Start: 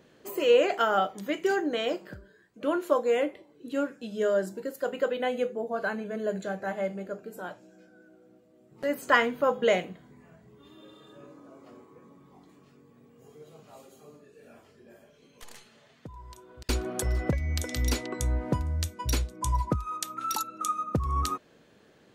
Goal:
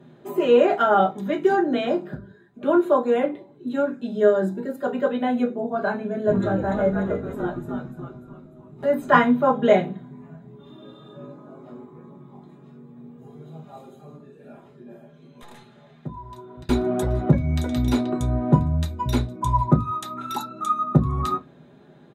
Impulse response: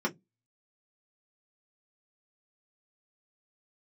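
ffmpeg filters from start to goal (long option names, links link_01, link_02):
-filter_complex "[0:a]asplit=3[link_01][link_02][link_03];[link_01]afade=type=out:start_time=6.27:duration=0.02[link_04];[link_02]asplit=7[link_05][link_06][link_07][link_08][link_09][link_10][link_11];[link_06]adelay=295,afreqshift=-110,volume=-4dB[link_12];[link_07]adelay=590,afreqshift=-220,volume=-10.9dB[link_13];[link_08]adelay=885,afreqshift=-330,volume=-17.9dB[link_14];[link_09]adelay=1180,afreqshift=-440,volume=-24.8dB[link_15];[link_10]adelay=1475,afreqshift=-550,volume=-31.7dB[link_16];[link_11]adelay=1770,afreqshift=-660,volume=-38.7dB[link_17];[link_05][link_12][link_13][link_14][link_15][link_16][link_17]amix=inputs=7:normalize=0,afade=type=in:start_time=6.27:duration=0.02,afade=type=out:start_time=9.18:duration=0.02[link_18];[link_03]afade=type=in:start_time=9.18:duration=0.02[link_19];[link_04][link_18][link_19]amix=inputs=3:normalize=0[link_20];[1:a]atrim=start_sample=2205,asetrate=30429,aresample=44100[link_21];[link_20][link_21]afir=irnorm=-1:irlink=0,volume=-4.5dB"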